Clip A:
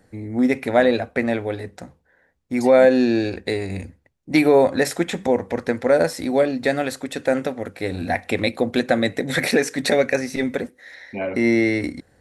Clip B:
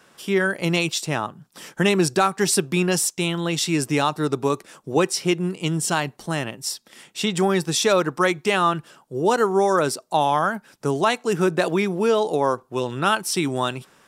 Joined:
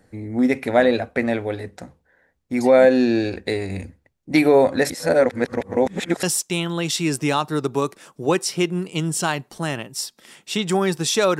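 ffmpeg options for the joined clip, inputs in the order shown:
-filter_complex "[0:a]apad=whole_dur=11.39,atrim=end=11.39,asplit=2[s0][s1];[s0]atrim=end=4.902[s2];[s1]atrim=start=4.898:end=6.232,asetpts=PTS-STARTPTS,areverse[s3];[1:a]atrim=start=2.908:end=8.07[s4];[s2][s3]acrossfade=d=0.004:c1=hsin:c2=hsin[s5];[s5][s4]acrossfade=d=0.004:c1=hsin:c2=hsin"

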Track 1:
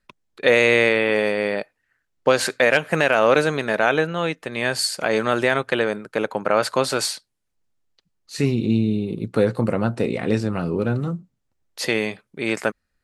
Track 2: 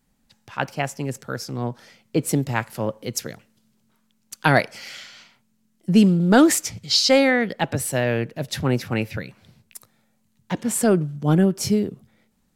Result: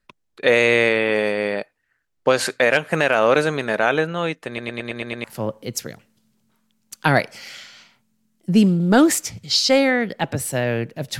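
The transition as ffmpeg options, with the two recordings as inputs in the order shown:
-filter_complex "[0:a]apad=whole_dur=11.19,atrim=end=11.19,asplit=7[s0][s1][s2][s3][s4][s5][s6];[s0]atrim=end=4.582[s7];[s1]atrim=start=4.468:end=4.582[s8];[s2]atrim=start=4.468:end=4.582[s9];[s3]atrim=start=4.468:end=4.582[s10];[s4]atrim=start=4.468:end=4.582[s11];[s5]atrim=start=4.468:end=4.582[s12];[s6]atrim=start=4.468:end=4.582[s13];[1:a]atrim=start=2.638:end=8.59[s14];[s7][s8]acrossfade=d=0.004:c1=hsin:c2=hsin[s15];[s15][s9]acrossfade=d=0.004:c1=hsin:c2=hsin[s16];[s16][s10]acrossfade=d=0.004:c1=hsin:c2=hsin[s17];[s17][s11]acrossfade=d=0.004:c1=hsin:c2=hsin[s18];[s18][s12]acrossfade=d=0.004:c1=hsin:c2=hsin[s19];[s19][s13]acrossfade=d=0.004:c1=hsin:c2=hsin[s20];[s20][s14]acrossfade=d=0.004:c1=hsin:c2=hsin"

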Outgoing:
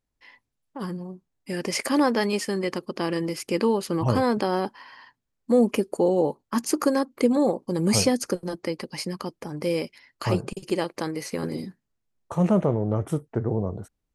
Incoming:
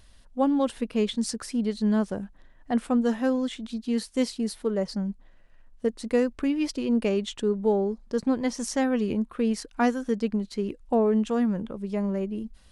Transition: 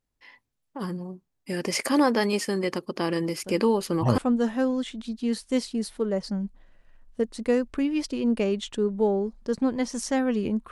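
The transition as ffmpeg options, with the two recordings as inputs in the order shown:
-filter_complex "[1:a]asplit=2[s0][s1];[0:a]apad=whole_dur=10.71,atrim=end=10.71,atrim=end=4.182[s2];[s1]atrim=start=2.828:end=9.36[s3];[s0]atrim=start=2.09:end=2.83,asetpts=PTS-STARTPTS,volume=0.335,afade=t=in:d=0.004:c=hsin,afade=t=out:st=0.736:d=0.004:c=hsin,adelay=3440[s4];[s2][s3]acrossfade=d=0.004:c1=hsin:c2=hsin[s5];[s5][s4]amix=inputs=2:normalize=0"

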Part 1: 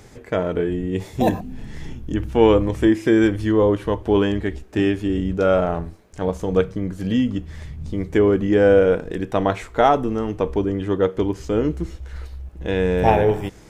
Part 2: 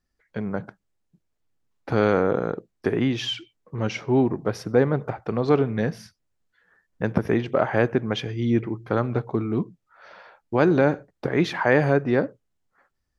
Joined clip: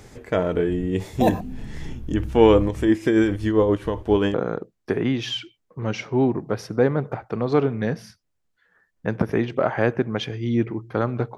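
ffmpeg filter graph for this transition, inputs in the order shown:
-filter_complex "[0:a]asettb=1/sr,asplit=3[s0][s1][s2];[s0]atrim=end=2.664[s3];[s1]atrim=start=2.66:end=4.34,asetpts=PTS-STARTPTS,afade=t=in:d=0.004:c=qsin,afade=t=out:st=1.676:d=0.004:c=qsin,tremolo=f=7.5:d=0.49[s4];[s2]atrim=start=4.336[s5];[s3][s4]acrossfade=d=0.004:c1=hsin:c2=qsin[s6];[s6][s5]acrossfade=d=0.004:c1=qsin:c2=hsin,apad=whole_dur=11.37,atrim=end=11.37,atrim=end=4.342[s7];[1:a]atrim=start=2.298:end=9.33[s8];[s7][s8]acrossfade=d=0.004:c1=hsin:c2=hsin"

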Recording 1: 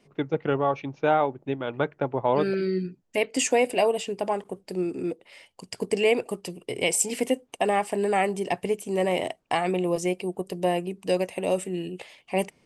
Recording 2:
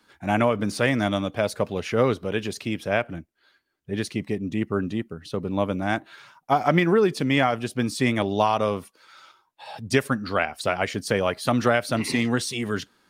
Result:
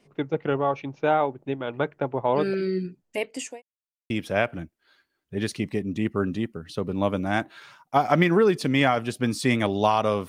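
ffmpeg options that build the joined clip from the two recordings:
-filter_complex "[0:a]apad=whole_dur=10.28,atrim=end=10.28,asplit=2[s0][s1];[s0]atrim=end=3.62,asetpts=PTS-STARTPTS,afade=t=out:st=2.71:d=0.91:c=qsin[s2];[s1]atrim=start=3.62:end=4.1,asetpts=PTS-STARTPTS,volume=0[s3];[1:a]atrim=start=2.66:end=8.84,asetpts=PTS-STARTPTS,afade=t=in:d=0.004:c=hsin[s4];[s2][s3][s4]concat=n=3:v=0:a=1"

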